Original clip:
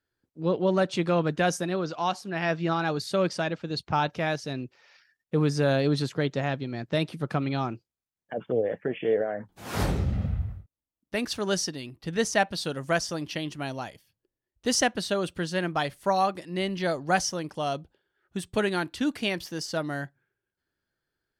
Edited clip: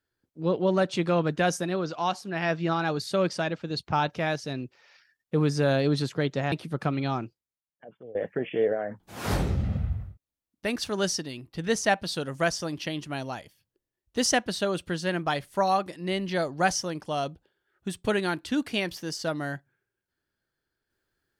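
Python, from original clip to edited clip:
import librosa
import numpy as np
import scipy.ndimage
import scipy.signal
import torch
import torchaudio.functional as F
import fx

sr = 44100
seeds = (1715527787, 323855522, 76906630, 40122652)

y = fx.edit(x, sr, fx.cut(start_s=6.52, length_s=0.49),
    fx.fade_out_to(start_s=7.7, length_s=0.94, curve='qua', floor_db=-19.0), tone=tone)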